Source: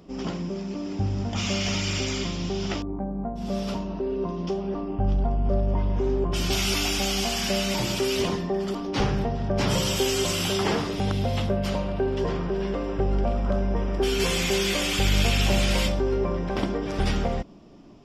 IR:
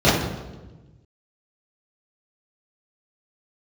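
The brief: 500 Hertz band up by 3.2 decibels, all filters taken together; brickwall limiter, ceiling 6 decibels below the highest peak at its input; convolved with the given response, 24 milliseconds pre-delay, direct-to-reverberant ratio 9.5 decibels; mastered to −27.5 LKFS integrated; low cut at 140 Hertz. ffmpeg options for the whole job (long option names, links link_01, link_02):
-filter_complex "[0:a]highpass=140,equalizer=frequency=500:width_type=o:gain=4.5,alimiter=limit=-17dB:level=0:latency=1,asplit=2[link_01][link_02];[1:a]atrim=start_sample=2205,adelay=24[link_03];[link_02][link_03]afir=irnorm=-1:irlink=0,volume=-33.5dB[link_04];[link_01][link_04]amix=inputs=2:normalize=0,volume=-3dB"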